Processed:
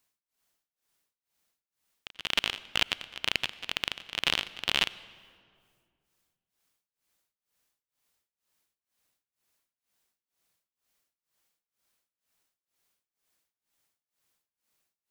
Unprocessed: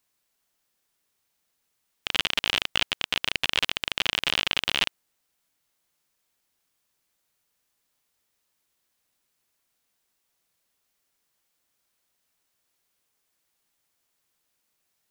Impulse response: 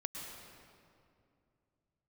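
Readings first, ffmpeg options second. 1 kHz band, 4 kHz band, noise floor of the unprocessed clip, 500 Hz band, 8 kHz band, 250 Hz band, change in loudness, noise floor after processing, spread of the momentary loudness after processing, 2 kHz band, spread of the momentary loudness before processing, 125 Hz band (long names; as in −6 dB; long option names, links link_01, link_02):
−4.5 dB, −4.5 dB, −76 dBFS, −4.5 dB, −4.5 dB, −4.5 dB, −4.5 dB, below −85 dBFS, 5 LU, −4.5 dB, 3 LU, −4.5 dB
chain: -filter_complex "[0:a]tremolo=f=2.1:d=0.99,asplit=2[link_01][link_02];[1:a]atrim=start_sample=2205,asetrate=52920,aresample=44100[link_03];[link_02][link_03]afir=irnorm=-1:irlink=0,volume=-13dB[link_04];[link_01][link_04]amix=inputs=2:normalize=0,volume=-1.5dB"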